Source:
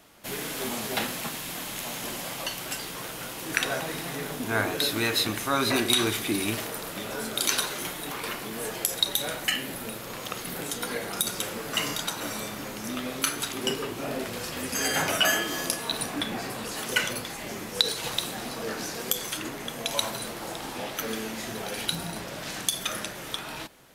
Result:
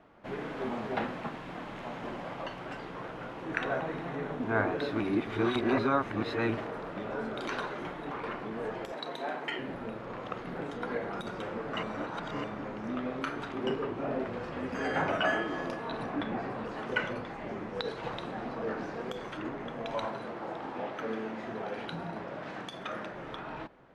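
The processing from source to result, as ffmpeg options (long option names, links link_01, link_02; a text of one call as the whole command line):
ffmpeg -i in.wav -filter_complex "[0:a]asettb=1/sr,asplit=3[link_01][link_02][link_03];[link_01]atrim=end=3.444[link_04];[link_02]atrim=start=3.44:end=4.4,asetpts=PTS-STARTPTS,afade=type=in:duration=0.004:curve=qsin,afade=type=out:start_time=0.956:duration=0.004:curve=qsin,bandreject=frequency=4900:width=12[link_05];[link_03]atrim=start=4.396[link_06];[link_04][link_05]acrossfade=duration=0.004:curve1=hsin:curve2=qsin[link_07];[link_07][link_06]acrossfade=duration=0.004:curve1=qsin:curve2=hsin,asettb=1/sr,asplit=3[link_08][link_09][link_10];[link_08]atrim=end=8.924[link_11];[link_09]atrim=start=8.92:end=9.59,asetpts=PTS-STARTPTS,afade=type=in:duration=0.004:curve=qsin,afade=type=out:start_time=0.666:duration=0.004:curve=qsin,afreqshift=120[link_12];[link_10]atrim=start=9.586[link_13];[link_11][link_12]acrossfade=duration=0.004:curve1=hsin:curve2=qsin[link_14];[link_14][link_13]acrossfade=duration=0.004:curve1=qsin:curve2=hsin,asettb=1/sr,asplit=3[link_15][link_16][link_17];[link_15]atrim=end=20.064[link_18];[link_16]atrim=start=20.06:end=23.14,asetpts=PTS-STARTPTS,afade=type=in:duration=0.004:curve=qsin,afade=type=out:start_time=3.076:duration=0.004:curve=qsin,highpass=frequency=160:poles=1[link_19];[link_17]atrim=start=23.136[link_20];[link_18][link_19]acrossfade=duration=0.004:curve1=hsin:curve2=qsin[link_21];[link_21][link_20]acrossfade=duration=0.004:curve1=qsin:curve2=hsin,asplit=5[link_22][link_23][link_24][link_25][link_26];[link_22]atrim=end=5.002[link_27];[link_23]atrim=start=4.998:end=6.492,asetpts=PTS-STARTPTS,areverse[link_28];[link_24]atrim=start=6.488:end=11.832[link_29];[link_25]atrim=start=11.828:end=12.442,asetpts=PTS-STARTPTS,areverse[link_30];[link_26]atrim=start=12.438[link_31];[link_27][link_28]acrossfade=duration=0.004:curve1=hsin:curve2=hsin[link_32];[link_32][link_29]acrossfade=duration=0.004:curve1=hsin:curve2=hsin[link_33];[link_33][link_30]acrossfade=duration=0.004:curve1=hsin:curve2=hsin[link_34];[link_34][link_31]acrossfade=duration=0.004:curve1=hsin:curve2=hsin,lowpass=1400,equalizer=frequency=70:width=0.43:gain=-2.5" out.wav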